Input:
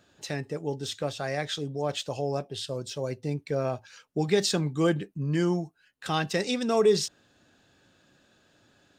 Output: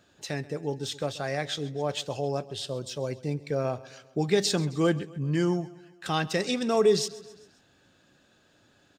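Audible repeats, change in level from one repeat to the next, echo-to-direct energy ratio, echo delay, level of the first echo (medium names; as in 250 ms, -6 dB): 3, -5.5 dB, -18.0 dB, 133 ms, -19.5 dB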